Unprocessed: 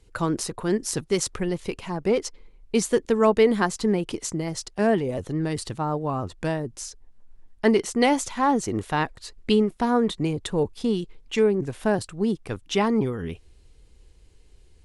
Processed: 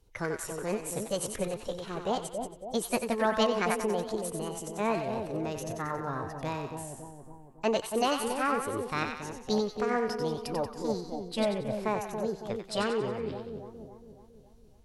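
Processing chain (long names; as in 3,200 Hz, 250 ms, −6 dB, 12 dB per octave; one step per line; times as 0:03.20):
echo with a time of its own for lows and highs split 680 Hz, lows 278 ms, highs 92 ms, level −5.5 dB
formants moved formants +6 semitones
level −8.5 dB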